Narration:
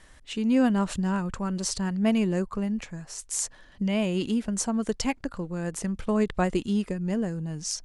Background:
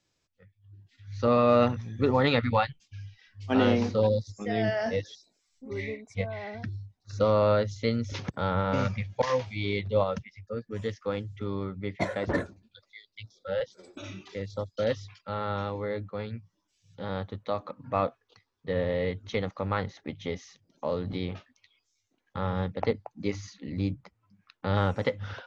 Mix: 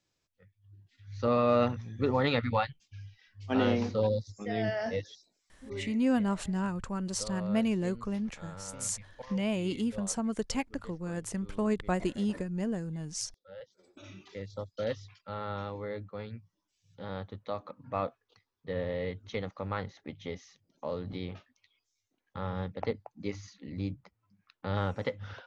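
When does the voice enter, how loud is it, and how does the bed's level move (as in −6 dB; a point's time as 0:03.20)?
5.50 s, −5.0 dB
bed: 0:05.83 −4 dB
0:06.11 −19 dB
0:13.45 −19 dB
0:14.24 −5.5 dB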